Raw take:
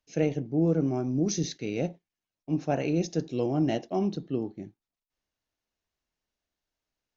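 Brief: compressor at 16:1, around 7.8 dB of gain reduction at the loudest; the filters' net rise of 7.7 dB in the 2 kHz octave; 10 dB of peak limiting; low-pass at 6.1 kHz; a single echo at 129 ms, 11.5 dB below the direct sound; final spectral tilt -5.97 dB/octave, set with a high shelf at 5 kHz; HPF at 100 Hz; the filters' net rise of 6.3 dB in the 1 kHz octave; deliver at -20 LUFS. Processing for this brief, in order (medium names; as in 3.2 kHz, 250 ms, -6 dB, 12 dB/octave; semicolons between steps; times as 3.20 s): high-pass 100 Hz; low-pass 6.1 kHz; peaking EQ 1 kHz +9 dB; peaking EQ 2 kHz +8 dB; treble shelf 5 kHz -3 dB; compression 16:1, threshold -26 dBFS; peak limiter -26 dBFS; delay 129 ms -11.5 dB; trim +16 dB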